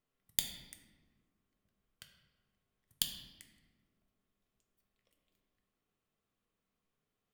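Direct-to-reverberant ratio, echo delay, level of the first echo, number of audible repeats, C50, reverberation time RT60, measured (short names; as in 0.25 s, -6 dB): 3.5 dB, none, none, none, 7.0 dB, 1.4 s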